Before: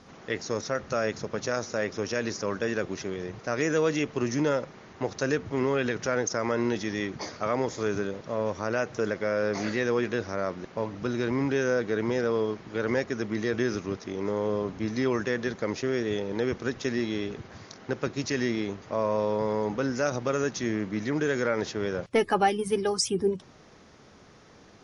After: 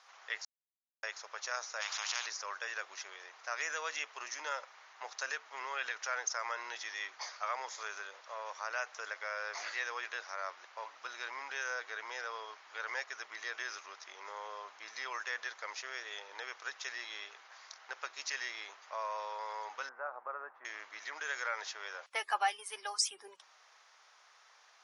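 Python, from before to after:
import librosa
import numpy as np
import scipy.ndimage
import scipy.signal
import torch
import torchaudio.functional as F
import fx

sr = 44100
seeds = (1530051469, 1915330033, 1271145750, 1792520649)

y = fx.spectral_comp(x, sr, ratio=4.0, at=(1.8, 2.25), fade=0.02)
y = fx.lowpass(y, sr, hz=1300.0, slope=24, at=(19.89, 20.65))
y = fx.edit(y, sr, fx.silence(start_s=0.45, length_s=0.58), tone=tone)
y = scipy.signal.sosfilt(scipy.signal.butter(4, 840.0, 'highpass', fs=sr, output='sos'), y)
y = y * librosa.db_to_amplitude(-4.0)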